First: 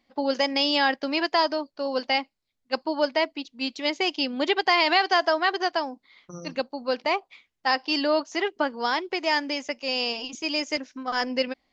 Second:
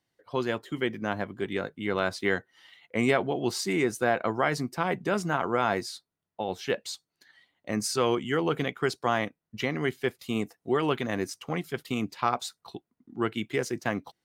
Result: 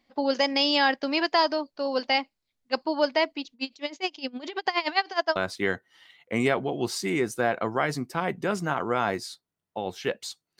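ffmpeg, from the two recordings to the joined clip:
-filter_complex "[0:a]asettb=1/sr,asplit=3[a][b][c];[a]atrim=end=3.534[d];[b]atrim=start=3.53:end=5.36,asetpts=PTS-STARTPTS,afade=t=in:d=0.004:c=qsin,afade=t=out:st=1.826:d=0.004:c=qsin,aeval=exprs='val(0)*pow(10,-21*(0.5-0.5*cos(2*PI*9.6*n/s))/20)':c=same[e];[c]atrim=start=5.356[f];[d][e]acrossfade=d=0.004:c1=hsin:c2=qsin[g];[g][f]acrossfade=d=0.004:c1=qsin:c2=hsin,apad=whole_dur=10.59,atrim=end=10.59,atrim=end=5.362[h];[1:a]atrim=start=1.988:end=7.22[i];[h][i]acrossfade=d=0.004:c1=hsin:c2=hsin"

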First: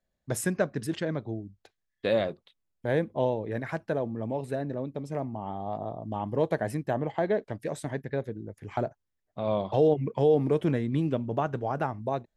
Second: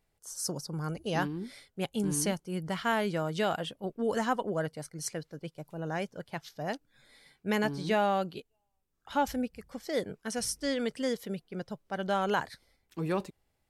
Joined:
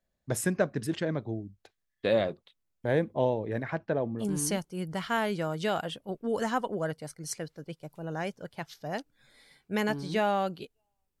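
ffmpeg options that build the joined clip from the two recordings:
-filter_complex "[0:a]asettb=1/sr,asplit=3[a][b][c];[a]atrim=end=3.634[d];[b]atrim=start=3.63:end=4.27,asetpts=PTS-STARTPTS,afade=t=in:d=0.004:c=qsin,afade=t=out:st=0.636:d=0.004:c=qsin,lowpass=4k[e];[c]atrim=start=4.266[f];[d][e]acrossfade=d=0.004:c1=hsin:c2=qsin[g];[g][f]acrossfade=d=0.004:c1=qsin:c2=hsin,apad=whole_dur=11.2,atrim=end=11.2,atrim=end=4.27,asetpts=PTS-STARTPTS[h];[1:a]atrim=start=1.92:end=8.95,asetpts=PTS-STARTPTS[i];[h][i]acrossfade=d=0.1:c1=tri:c2=tri"

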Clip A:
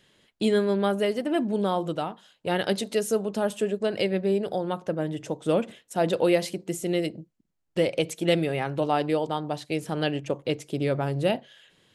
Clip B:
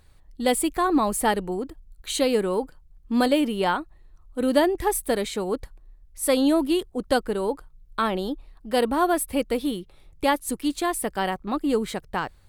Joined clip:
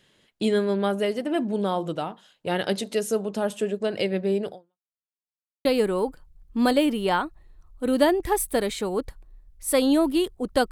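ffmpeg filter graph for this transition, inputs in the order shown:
-filter_complex "[0:a]apad=whole_dur=10.71,atrim=end=10.71,asplit=2[a][b];[a]atrim=end=4.93,asetpts=PTS-STARTPTS,afade=t=out:st=4.49:d=0.44:c=exp[c];[b]atrim=start=4.93:end=5.65,asetpts=PTS-STARTPTS,volume=0[d];[1:a]atrim=start=2.2:end=7.26,asetpts=PTS-STARTPTS,afade=t=in:d=0.004:c=hsin[e];[c][d][e]concat=n=3:v=0:a=1"

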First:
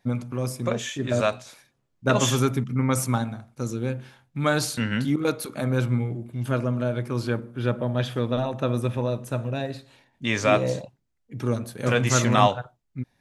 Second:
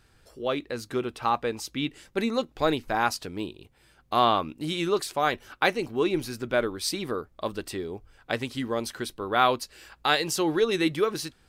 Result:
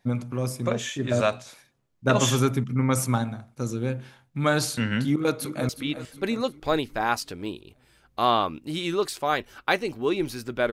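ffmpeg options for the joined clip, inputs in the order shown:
-filter_complex "[0:a]apad=whole_dur=10.72,atrim=end=10.72,atrim=end=5.692[a];[1:a]atrim=start=1.628:end=6.66[b];[a][b]acrossfade=d=0.004:c1=hsin:c2=hsin,asplit=2[c][d];[d]afade=t=in:st=5.05:d=0.01,afade=t=out:st=5.69:d=0.01,aecho=0:1:360|720|1080|1440|1800|2160:0.237137|0.130426|0.0717341|0.0394537|0.0216996|0.0119348[e];[c][e]amix=inputs=2:normalize=0"

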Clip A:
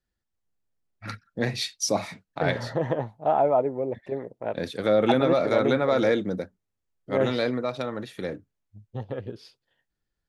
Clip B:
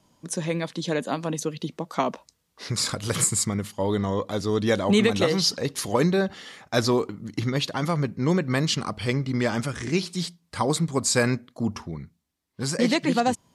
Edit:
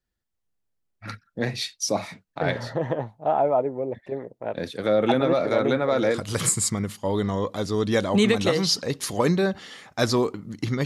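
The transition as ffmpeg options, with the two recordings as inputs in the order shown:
-filter_complex "[0:a]apad=whole_dur=10.85,atrim=end=10.85,atrim=end=6.22,asetpts=PTS-STARTPTS[a];[1:a]atrim=start=2.85:end=7.6,asetpts=PTS-STARTPTS[b];[a][b]acrossfade=d=0.12:c1=tri:c2=tri"

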